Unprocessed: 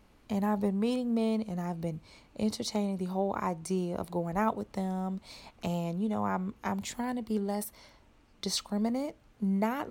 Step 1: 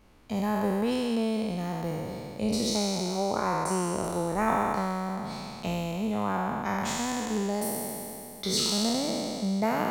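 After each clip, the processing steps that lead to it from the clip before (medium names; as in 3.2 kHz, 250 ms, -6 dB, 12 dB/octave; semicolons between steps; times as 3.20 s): spectral sustain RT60 2.88 s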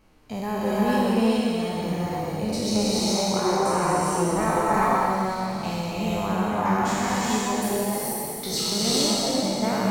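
band-stop 3.5 kHz, Q 19; gated-style reverb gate 460 ms rising, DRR -5 dB; flange 0.23 Hz, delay 6.1 ms, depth 5 ms, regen +65%; trim +4 dB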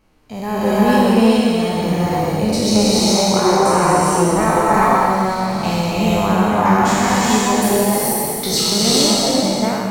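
level rider gain up to 11.5 dB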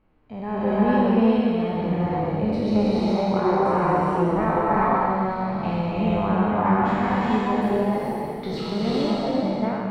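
distance through air 460 m; trim -5 dB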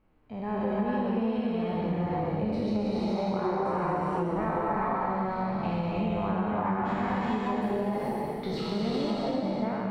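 compression, threshold -22 dBFS, peak gain reduction 8.5 dB; trim -3 dB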